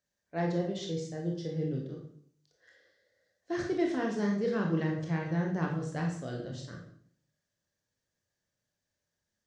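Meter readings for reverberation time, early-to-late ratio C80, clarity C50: 0.60 s, 9.5 dB, 5.0 dB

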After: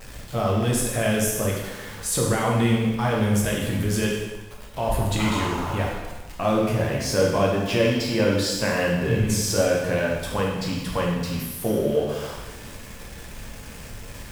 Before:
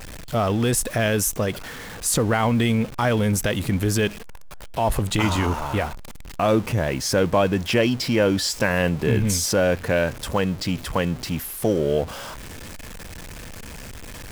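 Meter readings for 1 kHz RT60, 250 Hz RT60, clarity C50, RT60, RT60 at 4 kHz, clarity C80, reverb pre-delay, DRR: 1.2 s, 1.2 s, 1.5 dB, 1.2 s, 1.1 s, 4.5 dB, 4 ms, -3.5 dB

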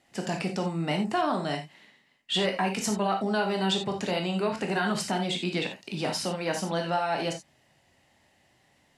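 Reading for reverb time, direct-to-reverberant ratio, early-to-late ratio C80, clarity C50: not exponential, 3.0 dB, 16.0 dB, 8.0 dB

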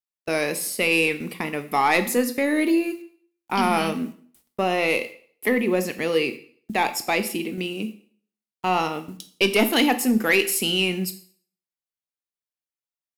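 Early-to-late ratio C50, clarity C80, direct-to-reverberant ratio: 14.0 dB, 17.0 dB, 9.0 dB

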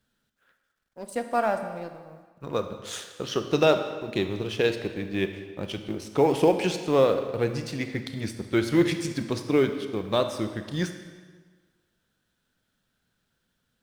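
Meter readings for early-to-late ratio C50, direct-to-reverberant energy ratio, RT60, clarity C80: 8.5 dB, 7.5 dB, 1.5 s, 10.0 dB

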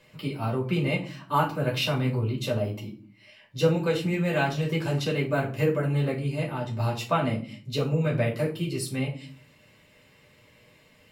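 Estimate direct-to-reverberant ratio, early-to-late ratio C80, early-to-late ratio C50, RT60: -3.5 dB, 16.0 dB, 10.5 dB, 0.45 s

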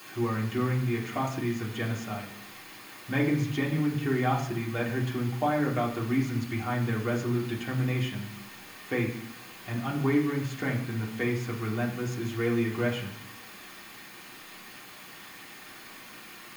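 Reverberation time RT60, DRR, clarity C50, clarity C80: 0.70 s, -4.5 dB, 8.0 dB, 11.0 dB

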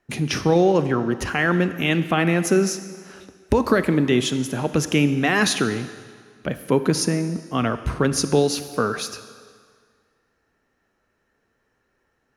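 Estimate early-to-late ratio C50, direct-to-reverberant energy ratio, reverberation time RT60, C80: 12.0 dB, 11.0 dB, 1.8 s, 13.0 dB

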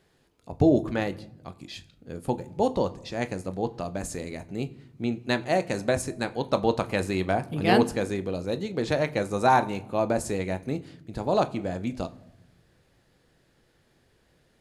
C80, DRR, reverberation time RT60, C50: 21.5 dB, 10.5 dB, not exponential, 19.0 dB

